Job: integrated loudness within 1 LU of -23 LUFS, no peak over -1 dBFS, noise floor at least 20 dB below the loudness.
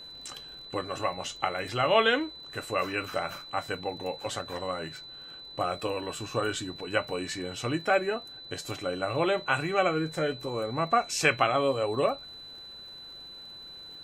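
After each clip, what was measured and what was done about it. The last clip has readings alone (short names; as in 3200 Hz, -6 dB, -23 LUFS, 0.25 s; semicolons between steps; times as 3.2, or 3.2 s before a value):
ticks 54/s; steady tone 4000 Hz; tone level -43 dBFS; loudness -29.5 LUFS; peak -9.0 dBFS; loudness target -23.0 LUFS
-> de-click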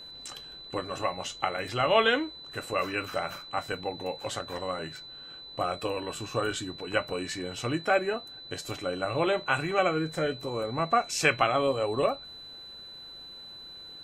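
ticks 0.14/s; steady tone 4000 Hz; tone level -43 dBFS
-> notch 4000 Hz, Q 30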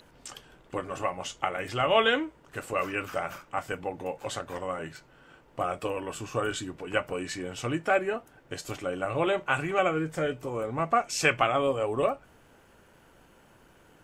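steady tone none; loudness -29.5 LUFS; peak -9.0 dBFS; loudness target -23.0 LUFS
-> gain +6.5 dB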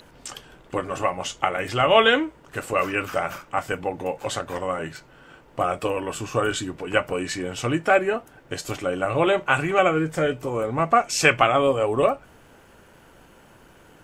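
loudness -23.0 LUFS; peak -2.5 dBFS; noise floor -52 dBFS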